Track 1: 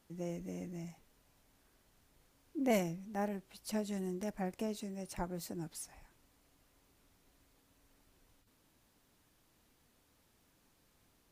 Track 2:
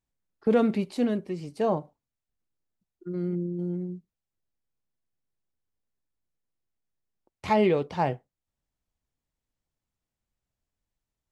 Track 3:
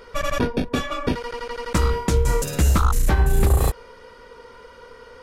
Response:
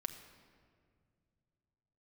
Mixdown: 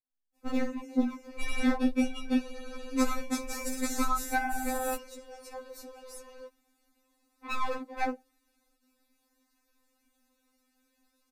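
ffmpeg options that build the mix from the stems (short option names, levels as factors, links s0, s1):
-filter_complex "[0:a]adelay=350,volume=1[s0];[1:a]agate=range=0.282:threshold=0.00708:ratio=16:detection=peak,lowpass=1400,aeval=exprs='0.0944*(abs(mod(val(0)/0.0944+3,4)-2)-1)':c=same,volume=1.06[s1];[2:a]adelay=1250,volume=0.631[s2];[s0][s1][s2]amix=inputs=3:normalize=0,asuperstop=centerf=3100:order=4:qfactor=7.7,afftfilt=real='re*3.46*eq(mod(b,12),0)':imag='im*3.46*eq(mod(b,12),0)':win_size=2048:overlap=0.75"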